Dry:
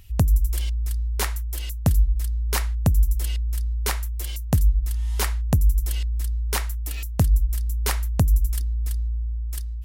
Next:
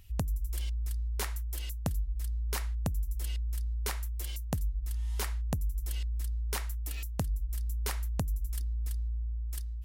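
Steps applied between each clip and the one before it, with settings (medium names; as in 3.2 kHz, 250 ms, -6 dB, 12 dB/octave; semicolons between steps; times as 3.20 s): compression 5:1, threshold -22 dBFS, peak gain reduction 8.5 dB; trim -7 dB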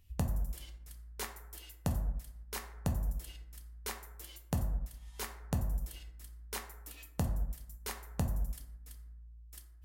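plate-style reverb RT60 0.97 s, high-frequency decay 0.35×, DRR 2.5 dB; upward expansion 1.5:1, over -45 dBFS; trim -1.5 dB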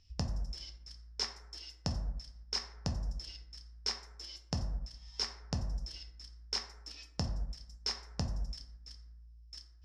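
four-pole ladder low-pass 5.4 kHz, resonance 90%; trim +10.5 dB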